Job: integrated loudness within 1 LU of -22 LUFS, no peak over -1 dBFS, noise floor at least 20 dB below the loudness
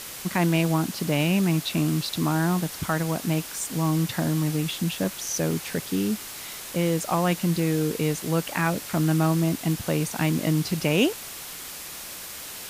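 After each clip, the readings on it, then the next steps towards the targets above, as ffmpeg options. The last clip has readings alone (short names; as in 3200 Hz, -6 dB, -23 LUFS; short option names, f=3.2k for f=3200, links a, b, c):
noise floor -38 dBFS; noise floor target -46 dBFS; loudness -25.5 LUFS; peak -10.0 dBFS; loudness target -22.0 LUFS
-> -af "afftdn=nr=8:nf=-38"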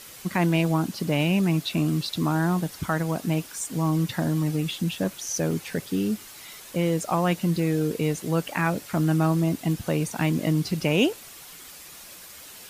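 noise floor -45 dBFS; noise floor target -46 dBFS
-> -af "afftdn=nr=6:nf=-45"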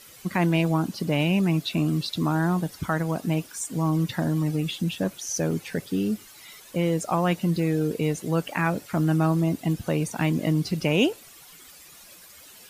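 noise floor -49 dBFS; loudness -25.5 LUFS; peak -10.0 dBFS; loudness target -22.0 LUFS
-> -af "volume=3.5dB"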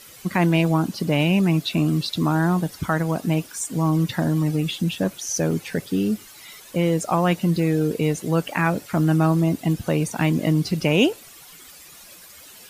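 loudness -22.0 LUFS; peak -6.5 dBFS; noise floor -45 dBFS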